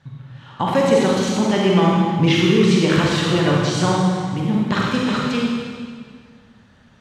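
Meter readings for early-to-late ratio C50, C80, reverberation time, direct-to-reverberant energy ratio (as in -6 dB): -2.5 dB, 0.5 dB, 1.9 s, -4.0 dB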